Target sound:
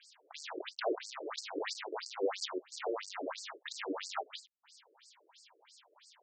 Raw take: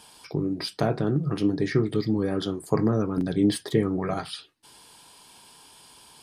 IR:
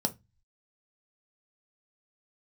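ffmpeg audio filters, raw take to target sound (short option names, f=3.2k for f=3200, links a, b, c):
-af "volume=25dB,asoftclip=hard,volume=-25dB,acrusher=bits=6:dc=4:mix=0:aa=0.000001,afftfilt=real='re*between(b*sr/1024,410*pow(6200/410,0.5+0.5*sin(2*PI*3*pts/sr))/1.41,410*pow(6200/410,0.5+0.5*sin(2*PI*3*pts/sr))*1.41)':imag='im*between(b*sr/1024,410*pow(6200/410,0.5+0.5*sin(2*PI*3*pts/sr))/1.41,410*pow(6200/410,0.5+0.5*sin(2*PI*3*pts/sr))*1.41)':win_size=1024:overlap=0.75,volume=1dB"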